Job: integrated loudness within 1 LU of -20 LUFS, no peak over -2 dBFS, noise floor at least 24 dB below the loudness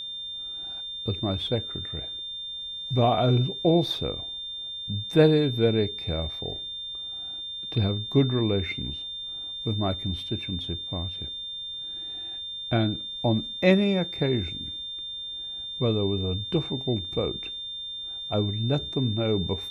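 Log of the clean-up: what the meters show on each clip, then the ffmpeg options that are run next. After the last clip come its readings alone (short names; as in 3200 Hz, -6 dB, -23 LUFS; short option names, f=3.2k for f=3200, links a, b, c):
steady tone 3600 Hz; tone level -33 dBFS; loudness -27.0 LUFS; peak -7.0 dBFS; loudness target -20.0 LUFS
-> -af "bandreject=f=3.6k:w=30"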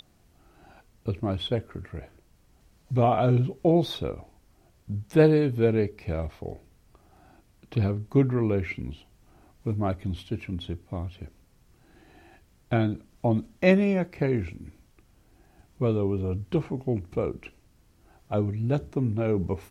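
steady tone none; loudness -27.0 LUFS; peak -7.5 dBFS; loudness target -20.0 LUFS
-> -af "volume=7dB,alimiter=limit=-2dB:level=0:latency=1"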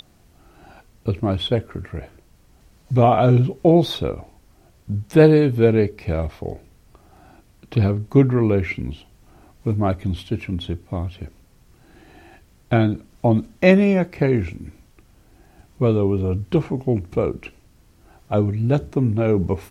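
loudness -20.0 LUFS; peak -2.0 dBFS; noise floor -55 dBFS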